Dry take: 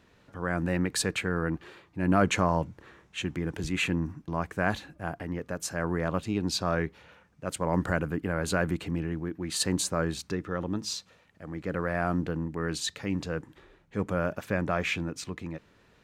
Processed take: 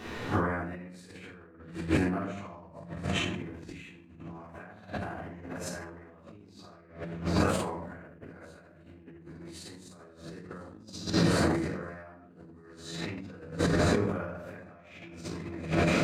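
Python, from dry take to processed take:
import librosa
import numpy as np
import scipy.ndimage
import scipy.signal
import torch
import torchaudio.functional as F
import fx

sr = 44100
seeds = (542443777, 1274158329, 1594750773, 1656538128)

y = fx.spec_blur(x, sr, span_ms=80.0)
y = fx.high_shelf(y, sr, hz=3800.0, db=-2.5)
y = fx.echo_swing(y, sr, ms=1010, ratio=3, feedback_pct=74, wet_db=-24.0)
y = fx.room_shoebox(y, sr, seeds[0], volume_m3=290.0, walls='mixed', distance_m=3.5)
y = fx.over_compress(y, sr, threshold_db=-36.0, ratio=-0.5)
y = fx.low_shelf(y, sr, hz=89.0, db=-9.0)
y = fx.sustainer(y, sr, db_per_s=39.0)
y = y * 10.0 ** (1.5 / 20.0)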